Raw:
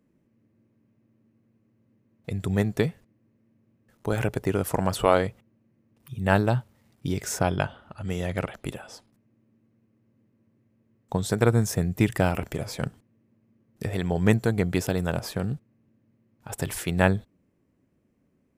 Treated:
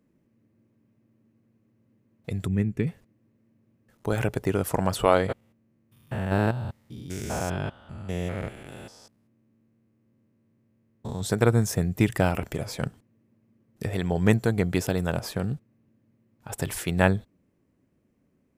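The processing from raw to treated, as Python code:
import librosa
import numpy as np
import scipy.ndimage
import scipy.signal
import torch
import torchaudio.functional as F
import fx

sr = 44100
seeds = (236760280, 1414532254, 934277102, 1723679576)

y = fx.curve_eq(x, sr, hz=(240.0, 400.0, 670.0, 1200.0, 2500.0, 3900.0, 7700.0, 13000.0), db=(0, -5, -18, -13, -4, -19, -13, -17), at=(2.46, 2.86), fade=0.02)
y = fx.spec_steps(y, sr, hold_ms=200, at=(5.28, 11.2), fade=0.02)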